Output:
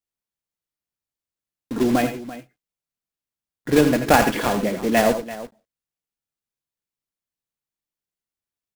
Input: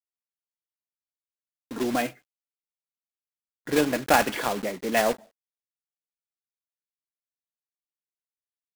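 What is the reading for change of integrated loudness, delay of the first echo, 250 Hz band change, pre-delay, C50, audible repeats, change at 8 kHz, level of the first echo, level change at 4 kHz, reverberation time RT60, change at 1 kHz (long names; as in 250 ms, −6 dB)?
+6.0 dB, 83 ms, +8.5 dB, no reverb audible, no reverb audible, 2, +3.0 dB, −10.5 dB, +3.0 dB, no reverb audible, +4.5 dB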